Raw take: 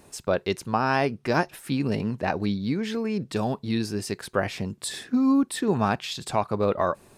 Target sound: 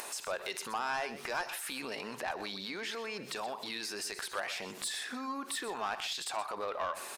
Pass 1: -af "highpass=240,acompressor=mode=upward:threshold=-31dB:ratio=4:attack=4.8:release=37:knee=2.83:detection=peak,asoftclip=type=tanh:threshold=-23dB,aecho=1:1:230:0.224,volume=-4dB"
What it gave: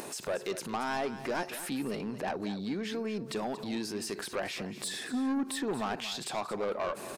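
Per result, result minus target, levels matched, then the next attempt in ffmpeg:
echo 105 ms late; 250 Hz band +9.5 dB
-af "highpass=240,acompressor=mode=upward:threshold=-31dB:ratio=4:attack=4.8:release=37:knee=2.83:detection=peak,asoftclip=type=tanh:threshold=-23dB,aecho=1:1:125:0.224,volume=-4dB"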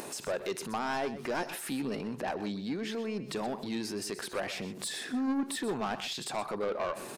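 250 Hz band +9.5 dB
-af "highpass=850,acompressor=mode=upward:threshold=-31dB:ratio=4:attack=4.8:release=37:knee=2.83:detection=peak,asoftclip=type=tanh:threshold=-23dB,aecho=1:1:125:0.224,volume=-4dB"

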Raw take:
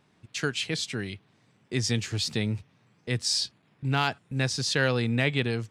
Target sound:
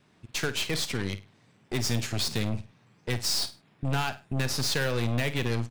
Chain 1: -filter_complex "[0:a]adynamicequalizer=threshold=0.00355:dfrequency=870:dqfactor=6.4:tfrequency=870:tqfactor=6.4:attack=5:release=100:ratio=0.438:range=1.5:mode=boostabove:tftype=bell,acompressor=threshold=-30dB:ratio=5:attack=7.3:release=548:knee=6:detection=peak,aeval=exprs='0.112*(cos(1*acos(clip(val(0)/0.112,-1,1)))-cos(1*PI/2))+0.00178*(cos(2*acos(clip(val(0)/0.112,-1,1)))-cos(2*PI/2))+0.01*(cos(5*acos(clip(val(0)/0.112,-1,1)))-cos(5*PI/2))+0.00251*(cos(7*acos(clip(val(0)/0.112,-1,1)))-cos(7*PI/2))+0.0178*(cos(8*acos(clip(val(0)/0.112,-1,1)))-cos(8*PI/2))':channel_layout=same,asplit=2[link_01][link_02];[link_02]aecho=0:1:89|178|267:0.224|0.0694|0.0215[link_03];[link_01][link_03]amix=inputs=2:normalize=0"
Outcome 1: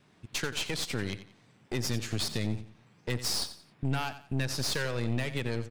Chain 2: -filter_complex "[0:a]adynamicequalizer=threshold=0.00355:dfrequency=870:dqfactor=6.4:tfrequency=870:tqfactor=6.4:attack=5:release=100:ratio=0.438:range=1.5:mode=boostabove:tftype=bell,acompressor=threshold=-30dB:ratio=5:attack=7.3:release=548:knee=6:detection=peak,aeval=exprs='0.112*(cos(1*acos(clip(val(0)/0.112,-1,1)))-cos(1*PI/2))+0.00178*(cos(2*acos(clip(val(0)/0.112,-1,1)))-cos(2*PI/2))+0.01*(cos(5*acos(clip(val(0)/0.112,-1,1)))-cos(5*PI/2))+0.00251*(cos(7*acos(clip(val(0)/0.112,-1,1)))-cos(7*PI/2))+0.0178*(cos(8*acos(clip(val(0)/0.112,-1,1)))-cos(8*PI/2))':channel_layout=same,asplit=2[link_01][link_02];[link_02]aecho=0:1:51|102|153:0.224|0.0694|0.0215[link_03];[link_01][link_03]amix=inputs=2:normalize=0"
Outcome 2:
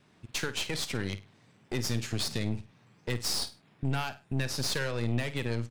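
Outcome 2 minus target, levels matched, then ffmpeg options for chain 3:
downward compressor: peak gain reduction +5.5 dB
-filter_complex "[0:a]adynamicequalizer=threshold=0.00355:dfrequency=870:dqfactor=6.4:tfrequency=870:tqfactor=6.4:attack=5:release=100:ratio=0.438:range=1.5:mode=boostabove:tftype=bell,acompressor=threshold=-23dB:ratio=5:attack=7.3:release=548:knee=6:detection=peak,aeval=exprs='0.112*(cos(1*acos(clip(val(0)/0.112,-1,1)))-cos(1*PI/2))+0.00178*(cos(2*acos(clip(val(0)/0.112,-1,1)))-cos(2*PI/2))+0.01*(cos(5*acos(clip(val(0)/0.112,-1,1)))-cos(5*PI/2))+0.00251*(cos(7*acos(clip(val(0)/0.112,-1,1)))-cos(7*PI/2))+0.0178*(cos(8*acos(clip(val(0)/0.112,-1,1)))-cos(8*PI/2))':channel_layout=same,asplit=2[link_01][link_02];[link_02]aecho=0:1:51|102|153:0.224|0.0694|0.0215[link_03];[link_01][link_03]amix=inputs=2:normalize=0"

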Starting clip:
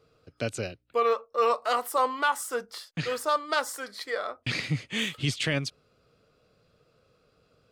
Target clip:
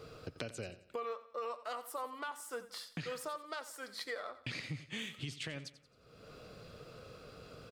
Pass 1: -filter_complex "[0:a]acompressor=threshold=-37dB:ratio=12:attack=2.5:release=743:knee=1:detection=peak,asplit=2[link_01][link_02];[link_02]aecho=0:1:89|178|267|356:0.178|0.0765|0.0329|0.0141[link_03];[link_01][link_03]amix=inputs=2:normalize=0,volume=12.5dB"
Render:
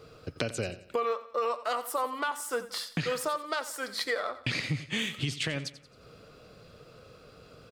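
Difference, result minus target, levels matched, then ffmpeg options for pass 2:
downward compressor: peak gain reduction −10.5 dB
-filter_complex "[0:a]acompressor=threshold=-48.5dB:ratio=12:attack=2.5:release=743:knee=1:detection=peak,asplit=2[link_01][link_02];[link_02]aecho=0:1:89|178|267|356:0.178|0.0765|0.0329|0.0141[link_03];[link_01][link_03]amix=inputs=2:normalize=0,volume=12.5dB"

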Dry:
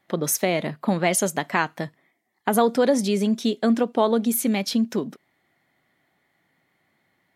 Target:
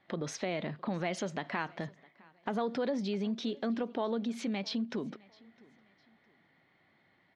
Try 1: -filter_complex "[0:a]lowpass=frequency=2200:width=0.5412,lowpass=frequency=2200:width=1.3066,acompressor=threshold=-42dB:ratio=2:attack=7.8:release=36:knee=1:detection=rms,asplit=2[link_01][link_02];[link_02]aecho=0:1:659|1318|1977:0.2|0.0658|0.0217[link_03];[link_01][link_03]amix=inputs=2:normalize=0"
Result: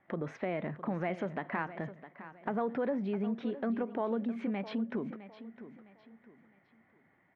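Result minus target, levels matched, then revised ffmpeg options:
4,000 Hz band −12.5 dB; echo-to-direct +11 dB
-filter_complex "[0:a]lowpass=frequency=4600:width=0.5412,lowpass=frequency=4600:width=1.3066,acompressor=threshold=-42dB:ratio=2:attack=7.8:release=36:knee=1:detection=rms,asplit=2[link_01][link_02];[link_02]aecho=0:1:659|1318:0.0562|0.0186[link_03];[link_01][link_03]amix=inputs=2:normalize=0"

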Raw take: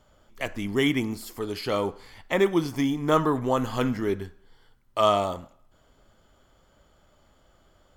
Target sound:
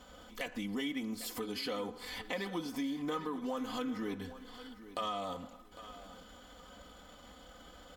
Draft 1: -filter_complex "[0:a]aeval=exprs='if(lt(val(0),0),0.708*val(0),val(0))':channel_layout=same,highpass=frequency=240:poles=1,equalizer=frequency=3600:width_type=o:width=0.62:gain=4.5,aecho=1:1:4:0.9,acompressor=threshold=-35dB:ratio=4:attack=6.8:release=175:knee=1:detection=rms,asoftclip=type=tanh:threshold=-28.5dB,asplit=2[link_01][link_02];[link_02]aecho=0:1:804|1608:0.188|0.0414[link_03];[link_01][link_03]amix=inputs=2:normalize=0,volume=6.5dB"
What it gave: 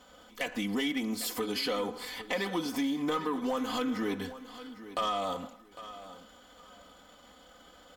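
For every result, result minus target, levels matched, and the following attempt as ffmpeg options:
downward compressor: peak gain reduction −7.5 dB; 125 Hz band −2.5 dB
-filter_complex "[0:a]aeval=exprs='if(lt(val(0),0),0.708*val(0),val(0))':channel_layout=same,highpass=frequency=240:poles=1,equalizer=frequency=3600:width_type=o:width=0.62:gain=4.5,aecho=1:1:4:0.9,acompressor=threshold=-44.5dB:ratio=4:attack=6.8:release=175:knee=1:detection=rms,asoftclip=type=tanh:threshold=-28.5dB,asplit=2[link_01][link_02];[link_02]aecho=0:1:804|1608:0.188|0.0414[link_03];[link_01][link_03]amix=inputs=2:normalize=0,volume=6.5dB"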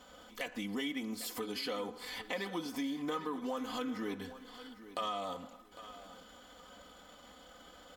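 125 Hz band −2.5 dB
-filter_complex "[0:a]aeval=exprs='if(lt(val(0),0),0.708*val(0),val(0))':channel_layout=same,highpass=frequency=77:poles=1,equalizer=frequency=3600:width_type=o:width=0.62:gain=4.5,aecho=1:1:4:0.9,acompressor=threshold=-44.5dB:ratio=4:attack=6.8:release=175:knee=1:detection=rms,asoftclip=type=tanh:threshold=-28.5dB,asplit=2[link_01][link_02];[link_02]aecho=0:1:804|1608:0.188|0.0414[link_03];[link_01][link_03]amix=inputs=2:normalize=0,volume=6.5dB"

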